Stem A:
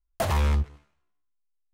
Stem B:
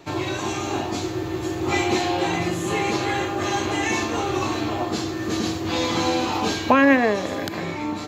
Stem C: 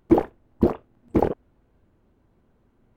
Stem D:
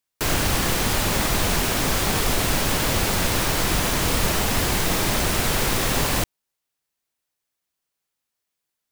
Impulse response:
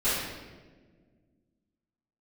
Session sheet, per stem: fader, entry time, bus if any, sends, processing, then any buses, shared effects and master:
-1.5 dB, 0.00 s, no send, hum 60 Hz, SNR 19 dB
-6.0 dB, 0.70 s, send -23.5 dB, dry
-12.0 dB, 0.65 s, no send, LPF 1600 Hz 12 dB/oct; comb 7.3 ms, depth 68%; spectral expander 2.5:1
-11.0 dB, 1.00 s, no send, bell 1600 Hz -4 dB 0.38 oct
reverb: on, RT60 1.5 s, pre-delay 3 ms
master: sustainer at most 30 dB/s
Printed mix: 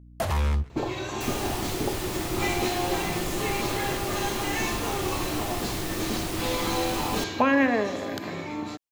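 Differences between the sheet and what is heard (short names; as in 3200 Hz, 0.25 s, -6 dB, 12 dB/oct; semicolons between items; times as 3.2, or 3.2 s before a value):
stem C: missing spectral expander 2.5:1; master: missing sustainer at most 30 dB/s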